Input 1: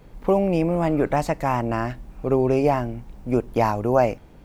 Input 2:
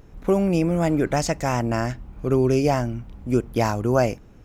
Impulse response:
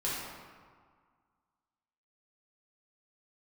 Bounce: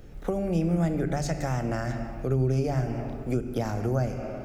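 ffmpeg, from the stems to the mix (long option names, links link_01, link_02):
-filter_complex "[0:a]volume=-5dB[link_01];[1:a]volume=-1,volume=-1.5dB,asplit=2[link_02][link_03];[link_03]volume=-11dB[link_04];[2:a]atrim=start_sample=2205[link_05];[link_04][link_05]afir=irnorm=-1:irlink=0[link_06];[link_01][link_02][link_06]amix=inputs=3:normalize=0,equalizer=frequency=1000:width_type=o:width=0.27:gain=-13,acrossover=split=190[link_07][link_08];[link_08]acompressor=threshold=-29dB:ratio=6[link_09];[link_07][link_09]amix=inputs=2:normalize=0"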